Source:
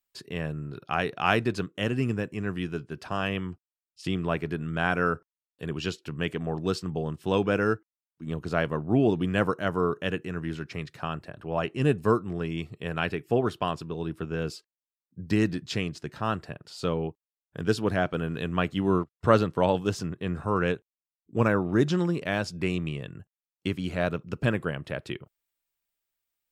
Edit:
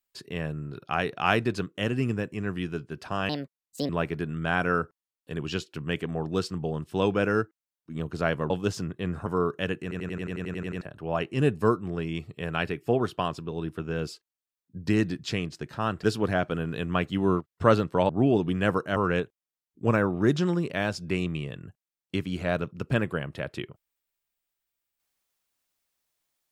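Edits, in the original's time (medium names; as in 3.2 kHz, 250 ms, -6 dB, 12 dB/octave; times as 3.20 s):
3.29–4.21 s: speed 153%
8.82–9.69 s: swap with 19.72–20.48 s
10.25 s: stutter in place 0.09 s, 11 plays
16.46–17.66 s: delete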